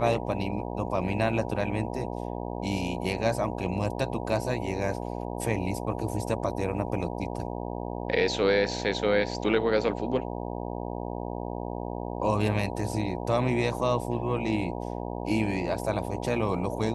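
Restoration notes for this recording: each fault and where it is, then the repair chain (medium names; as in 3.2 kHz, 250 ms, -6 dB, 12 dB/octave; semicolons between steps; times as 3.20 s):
buzz 60 Hz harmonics 16 -34 dBFS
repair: de-hum 60 Hz, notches 16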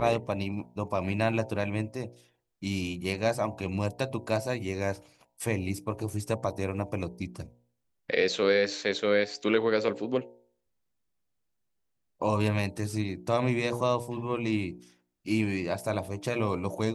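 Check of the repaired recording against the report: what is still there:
nothing left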